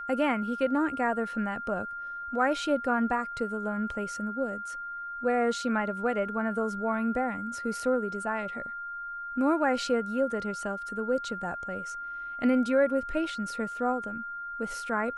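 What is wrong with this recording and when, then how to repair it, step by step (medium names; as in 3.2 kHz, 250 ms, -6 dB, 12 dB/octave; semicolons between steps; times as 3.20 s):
whine 1.4 kHz -35 dBFS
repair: band-stop 1.4 kHz, Q 30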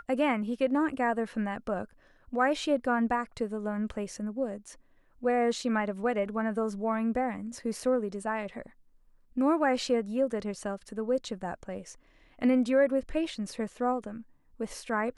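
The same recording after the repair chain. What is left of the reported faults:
nothing left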